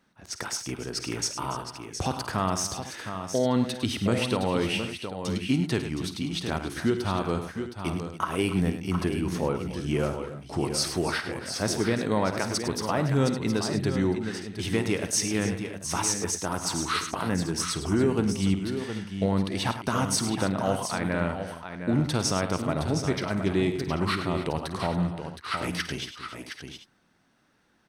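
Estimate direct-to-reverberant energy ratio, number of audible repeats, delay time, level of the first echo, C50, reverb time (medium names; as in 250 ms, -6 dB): no reverb, 5, 52 ms, -13.5 dB, no reverb, no reverb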